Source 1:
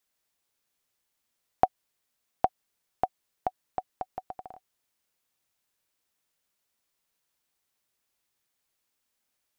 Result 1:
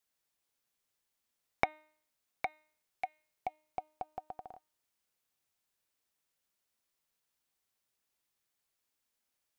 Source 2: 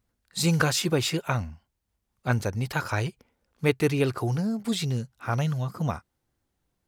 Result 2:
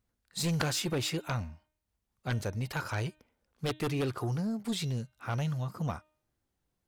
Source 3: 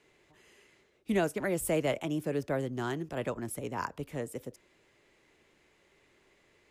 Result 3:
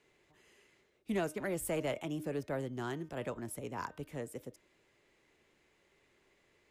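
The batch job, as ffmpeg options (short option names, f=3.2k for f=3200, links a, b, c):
-af "aeval=exprs='0.501*(cos(1*acos(clip(val(0)/0.501,-1,1)))-cos(1*PI/2))+0.251*(cos(3*acos(clip(val(0)/0.501,-1,1)))-cos(3*PI/2))+0.0316*(cos(7*acos(clip(val(0)/0.501,-1,1)))-cos(7*PI/2))':c=same,bandreject=f=307.7:t=h:w=4,bandreject=f=615.4:t=h:w=4,bandreject=f=923.1:t=h:w=4,bandreject=f=1.2308k:t=h:w=4,bandreject=f=1.5385k:t=h:w=4,bandreject=f=1.8462k:t=h:w=4,bandreject=f=2.1539k:t=h:w=4,bandreject=f=2.4616k:t=h:w=4,bandreject=f=2.7693k:t=h:w=4,bandreject=f=3.077k:t=h:w=4,bandreject=f=3.3847k:t=h:w=4,bandreject=f=3.6924k:t=h:w=4,bandreject=f=4.0001k:t=h:w=4,volume=-4dB"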